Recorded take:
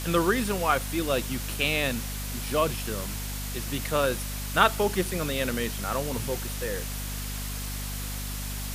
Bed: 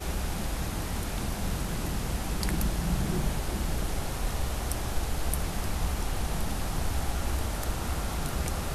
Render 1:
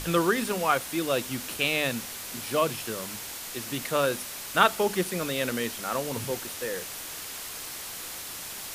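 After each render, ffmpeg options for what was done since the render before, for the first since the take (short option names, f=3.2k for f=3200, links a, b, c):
-af "bandreject=f=50:t=h:w=6,bandreject=f=100:t=h:w=6,bandreject=f=150:t=h:w=6,bandreject=f=200:t=h:w=6,bandreject=f=250:t=h:w=6"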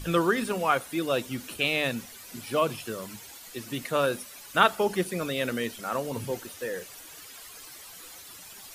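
-af "afftdn=nr=12:nf=-39"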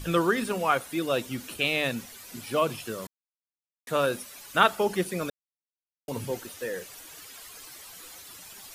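-filter_complex "[0:a]asplit=5[a][b][c][d][e];[a]atrim=end=3.07,asetpts=PTS-STARTPTS,afade=t=out:st=3.066:d=0.004:c=hsin[f];[b]atrim=start=3.07:end=3.87,asetpts=PTS-STARTPTS,volume=0[g];[c]atrim=start=3.87:end=5.3,asetpts=PTS-STARTPTS,afade=t=in:d=0.004:c=hsin,afade=t=out:st=1.426:d=0.004:c=hsin[h];[d]atrim=start=5.3:end=6.08,asetpts=PTS-STARTPTS,volume=0[i];[e]atrim=start=6.08,asetpts=PTS-STARTPTS,afade=t=in:d=0.004:c=hsin[j];[f][g][h][i][j]concat=n=5:v=0:a=1"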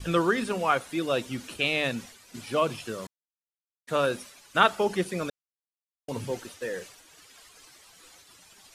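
-af "lowpass=8.8k,agate=range=-33dB:threshold=-42dB:ratio=3:detection=peak"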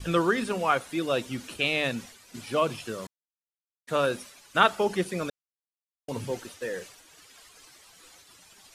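-af anull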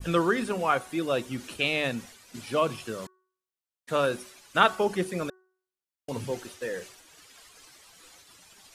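-af "bandreject=f=372.3:t=h:w=4,bandreject=f=744.6:t=h:w=4,bandreject=f=1.1169k:t=h:w=4,bandreject=f=1.4892k:t=h:w=4,bandreject=f=1.8615k:t=h:w=4,adynamicequalizer=threshold=0.00794:dfrequency=4000:dqfactor=0.71:tfrequency=4000:tqfactor=0.71:attack=5:release=100:ratio=0.375:range=2.5:mode=cutabove:tftype=bell"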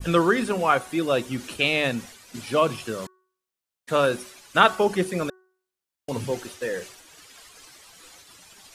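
-af "volume=4.5dB,alimiter=limit=-2dB:level=0:latency=1"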